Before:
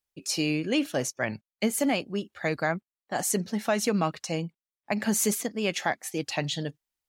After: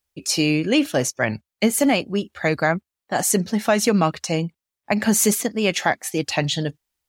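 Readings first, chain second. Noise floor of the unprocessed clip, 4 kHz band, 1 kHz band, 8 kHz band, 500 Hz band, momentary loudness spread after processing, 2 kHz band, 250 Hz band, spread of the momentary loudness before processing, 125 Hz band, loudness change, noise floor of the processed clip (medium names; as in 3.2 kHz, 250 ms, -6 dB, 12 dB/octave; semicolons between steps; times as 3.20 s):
under -85 dBFS, +7.5 dB, +7.5 dB, +7.5 dB, +7.5 dB, 8 LU, +7.5 dB, +8.0 dB, 8 LU, +8.0 dB, +7.5 dB, under -85 dBFS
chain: peaking EQ 72 Hz +9 dB 0.67 oct; trim +7.5 dB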